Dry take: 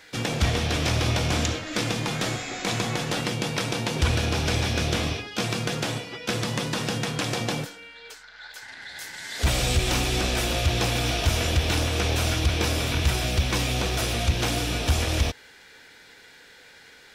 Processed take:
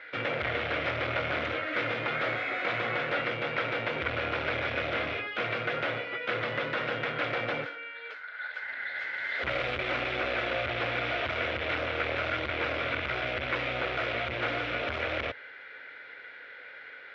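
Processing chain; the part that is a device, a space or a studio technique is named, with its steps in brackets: guitar amplifier (valve stage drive 27 dB, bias 0.4; tone controls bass -9 dB, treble -6 dB; cabinet simulation 82–3500 Hz, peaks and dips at 110 Hz +3 dB, 190 Hz -8 dB, 570 Hz +9 dB, 860 Hz -3 dB, 1.4 kHz +10 dB, 2.1 kHz +9 dB)

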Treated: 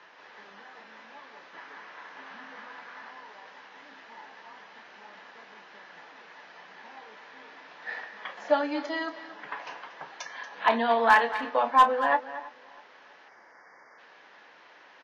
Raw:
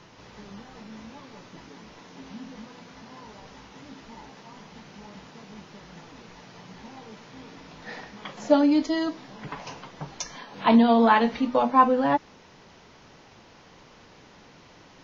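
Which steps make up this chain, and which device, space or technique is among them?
megaphone (band-pass 620–3200 Hz; peaking EQ 1.7 kHz +8 dB 0.27 oct; hard clipper -11 dBFS, distortion -20 dB; doubling 30 ms -12.5 dB); 1.53–3.11 s: peaking EQ 1.3 kHz +6 dB 1.5 oct; 13.29–13.98 s: spectral selection erased 2.3–4.6 kHz; delay 233 ms -14 dB; filtered feedback delay 323 ms, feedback 38%, low-pass 2.2 kHz, level -21.5 dB

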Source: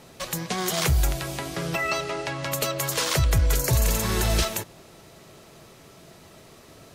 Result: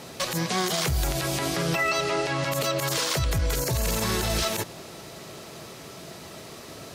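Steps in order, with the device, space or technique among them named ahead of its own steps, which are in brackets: broadcast voice chain (high-pass 99 Hz 6 dB/octave; de-esser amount 45%; compression 4:1, threshold -28 dBFS, peak gain reduction 7.5 dB; peaking EQ 4.8 kHz +2.5 dB 0.77 oct; peak limiter -24 dBFS, peak gain reduction 10 dB); trim +7.5 dB

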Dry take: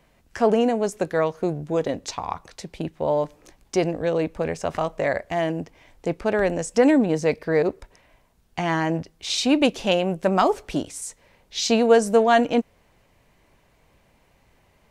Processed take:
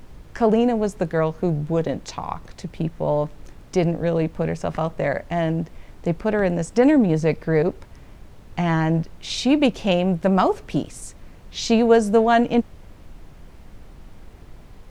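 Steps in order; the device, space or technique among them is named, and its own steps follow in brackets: car interior (peaking EQ 160 Hz +8 dB 0.88 oct; treble shelf 4.7 kHz -6 dB; brown noise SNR 18 dB)

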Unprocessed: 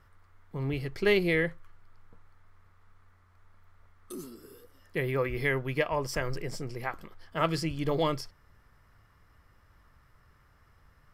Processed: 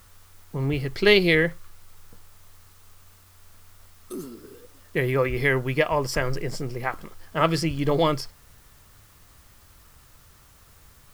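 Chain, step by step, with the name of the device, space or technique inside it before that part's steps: 0.92–1.35 s: peaking EQ 3.8 kHz +8 dB 0.96 oct; plain cassette with noise reduction switched in (tape noise reduction on one side only decoder only; wow and flutter 29 cents; white noise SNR 30 dB); trim +6.5 dB

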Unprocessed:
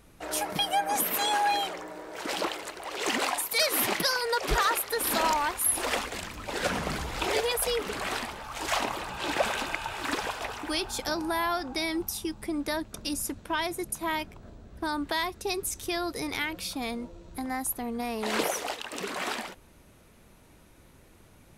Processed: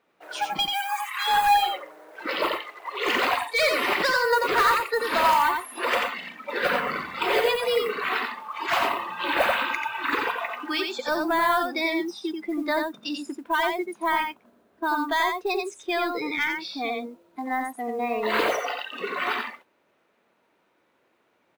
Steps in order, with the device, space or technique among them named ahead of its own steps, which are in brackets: carbon microphone (band-pass 400–2900 Hz; saturation -23.5 dBFS, distortion -16 dB; modulation noise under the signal 19 dB); 0.65–1.28 s: Chebyshev high-pass 870 Hz, order 5; spectral noise reduction 15 dB; delay 88 ms -4.5 dB; trim +8.5 dB

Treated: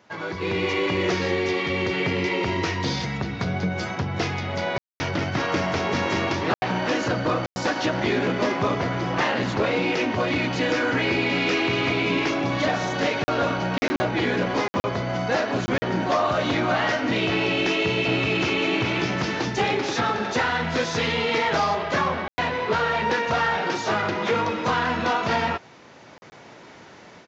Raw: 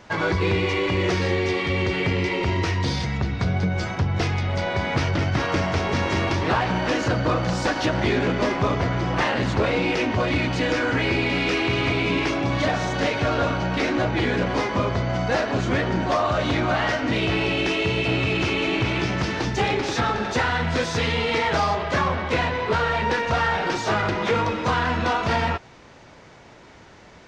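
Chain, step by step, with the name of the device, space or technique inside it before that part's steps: call with lost packets (high-pass 140 Hz 12 dB/octave; resampled via 16 kHz; level rider gain up to 11.5 dB; lost packets bursts); trim -9 dB

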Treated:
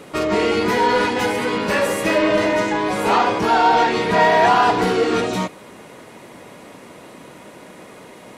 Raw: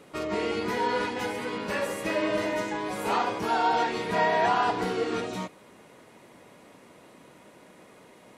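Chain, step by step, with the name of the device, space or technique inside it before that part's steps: parallel distortion (in parallel at -5 dB: hard clipper -29.5 dBFS, distortion -6 dB); 2.18–4.21 s: on the sum: treble shelf 11 kHz -11 dB; trim +8 dB

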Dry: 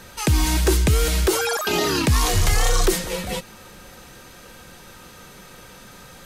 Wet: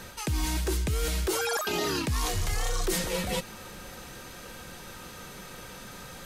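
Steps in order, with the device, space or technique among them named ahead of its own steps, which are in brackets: compression on the reversed sound (reverse; compression 6:1, threshold -26 dBFS, peak gain reduction 12 dB; reverse)

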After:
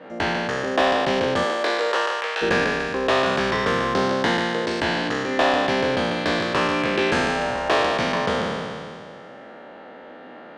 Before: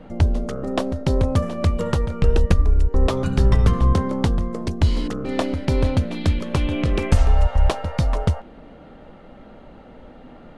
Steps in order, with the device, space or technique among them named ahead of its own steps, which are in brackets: spectral sustain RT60 2.19 s; intercom (band-pass 360–4900 Hz; peaking EQ 1.7 kHz +9 dB 0.25 oct; saturation -12.5 dBFS, distortion -20 dB); 1.43–2.41 s: high-pass 250 Hz -> 690 Hz 24 dB/octave; trim +2.5 dB

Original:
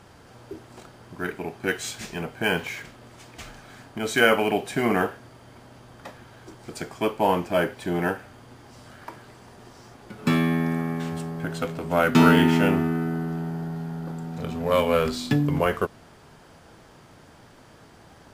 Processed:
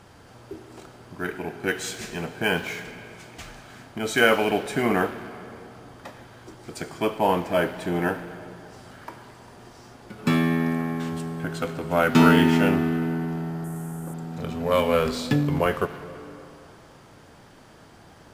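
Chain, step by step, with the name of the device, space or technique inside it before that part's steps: saturated reverb return (on a send at -8.5 dB: reverberation RT60 2.4 s, pre-delay 67 ms + saturation -25 dBFS, distortion -7 dB); 13.64–14.14 s: on the sum: resonant high shelf 6.2 kHz +12 dB, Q 3

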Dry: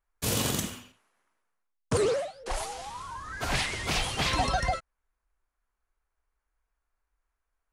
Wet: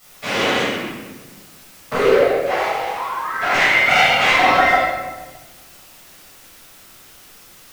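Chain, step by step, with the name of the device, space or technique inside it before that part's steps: drive-through speaker (band-pass 380–3000 Hz; peaking EQ 2.1 kHz +7.5 dB 0.43 oct; hard clipper -24.5 dBFS, distortion -16 dB; white noise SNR 22 dB); 3.71–4.18 s: comb 1.4 ms, depth 80%; simulated room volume 850 m³, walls mixed, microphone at 6.7 m; trim +2.5 dB

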